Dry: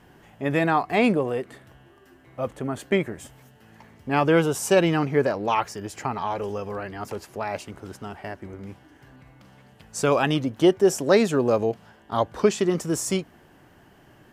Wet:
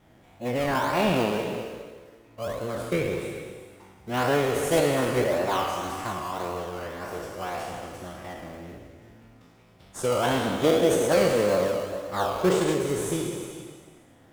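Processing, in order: spectral sustain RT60 1.48 s; formant-preserving pitch shift -2.5 st; in parallel at -5 dB: decimation with a swept rate 20×, swing 60% 1.8 Hz; on the sum: formant shift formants +2 st; gated-style reverb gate 460 ms flat, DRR 7 dB; trim -9 dB

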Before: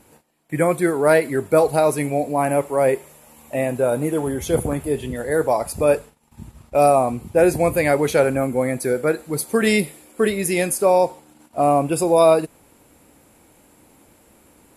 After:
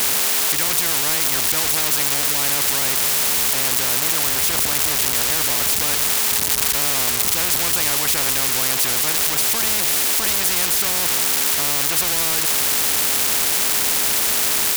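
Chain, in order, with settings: zero-crossing glitches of -17 dBFS; whistle 420 Hz -33 dBFS; spectrum-flattening compressor 10:1; trim +2.5 dB

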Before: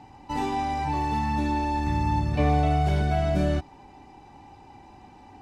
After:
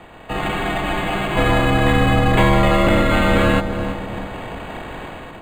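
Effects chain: spectral peaks clipped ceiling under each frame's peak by 22 dB; compression, threshold -30 dBFS, peak gain reduction 11.5 dB; frequency shift -98 Hz; level rider gain up to 11 dB; filtered feedback delay 333 ms, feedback 51%, low-pass 1.1 kHz, level -7.5 dB; spectral freeze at 0.39 s, 0.97 s; decimation joined by straight lines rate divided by 8×; trim +7.5 dB

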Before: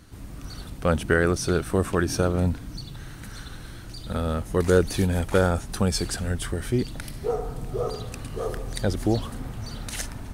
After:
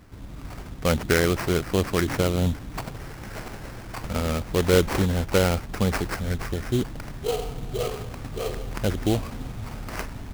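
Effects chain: 2.43–5.07 s: peaking EQ 3.5 kHz +13 dB 0.87 oct; sample-rate reducer 3.6 kHz, jitter 20%

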